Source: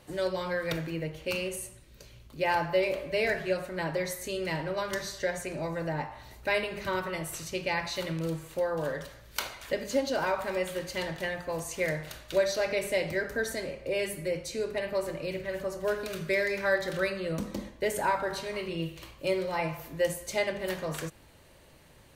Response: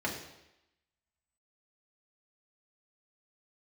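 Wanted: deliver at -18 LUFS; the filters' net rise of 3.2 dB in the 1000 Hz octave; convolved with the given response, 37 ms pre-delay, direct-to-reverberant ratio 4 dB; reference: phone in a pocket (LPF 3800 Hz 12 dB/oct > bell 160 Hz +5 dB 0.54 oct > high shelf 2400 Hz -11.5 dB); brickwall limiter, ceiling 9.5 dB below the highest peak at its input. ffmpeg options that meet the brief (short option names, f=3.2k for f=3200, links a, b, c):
-filter_complex "[0:a]equalizer=f=1k:t=o:g=5.5,alimiter=limit=-21.5dB:level=0:latency=1,asplit=2[a][b];[1:a]atrim=start_sample=2205,adelay=37[c];[b][c]afir=irnorm=-1:irlink=0,volume=-10.5dB[d];[a][d]amix=inputs=2:normalize=0,lowpass=3.8k,equalizer=f=160:t=o:w=0.54:g=5,highshelf=f=2.4k:g=-11.5,volume=13.5dB"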